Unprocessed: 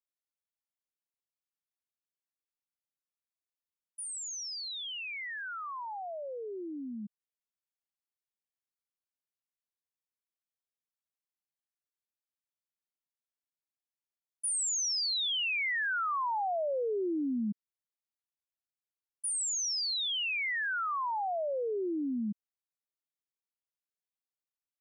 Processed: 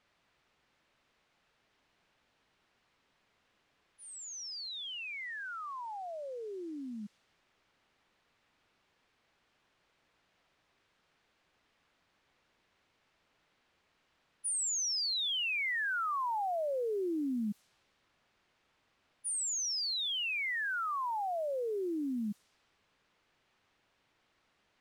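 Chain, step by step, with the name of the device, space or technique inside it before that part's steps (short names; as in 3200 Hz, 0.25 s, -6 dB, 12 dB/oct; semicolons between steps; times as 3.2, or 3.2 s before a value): cassette deck with a dynamic noise filter (white noise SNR 27 dB; low-pass opened by the level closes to 2700 Hz, open at -31.5 dBFS); gain -2 dB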